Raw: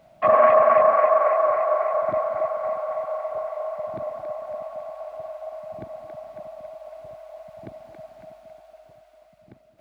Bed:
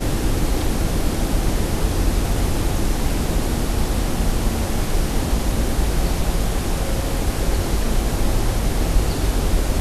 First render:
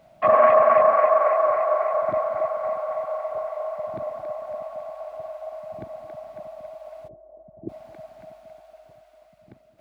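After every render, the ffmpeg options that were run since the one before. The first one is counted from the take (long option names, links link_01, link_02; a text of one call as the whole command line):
ffmpeg -i in.wav -filter_complex "[0:a]asplit=3[link_01][link_02][link_03];[link_01]afade=type=out:start_time=7.07:duration=0.02[link_04];[link_02]lowpass=frequency=360:width_type=q:width=3.6,afade=type=in:start_time=7.07:duration=0.02,afade=type=out:start_time=7.68:duration=0.02[link_05];[link_03]afade=type=in:start_time=7.68:duration=0.02[link_06];[link_04][link_05][link_06]amix=inputs=3:normalize=0" out.wav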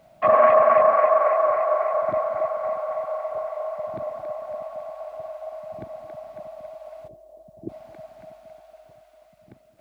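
ffmpeg -i in.wav -af "acrusher=bits=11:mix=0:aa=0.000001" out.wav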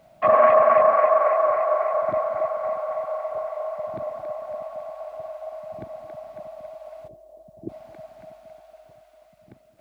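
ffmpeg -i in.wav -af anull out.wav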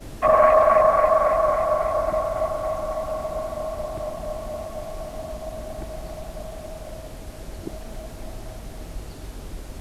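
ffmpeg -i in.wav -i bed.wav -filter_complex "[1:a]volume=-17dB[link_01];[0:a][link_01]amix=inputs=2:normalize=0" out.wav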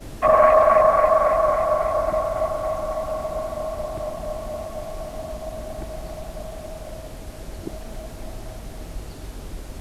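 ffmpeg -i in.wav -af "volume=1dB" out.wav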